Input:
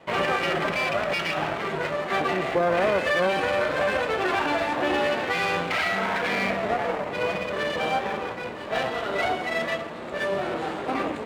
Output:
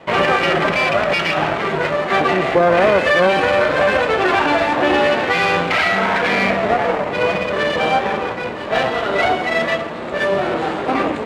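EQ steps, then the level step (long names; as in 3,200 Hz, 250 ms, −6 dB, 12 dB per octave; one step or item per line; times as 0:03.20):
high-shelf EQ 9,900 Hz −11.5 dB
+9.0 dB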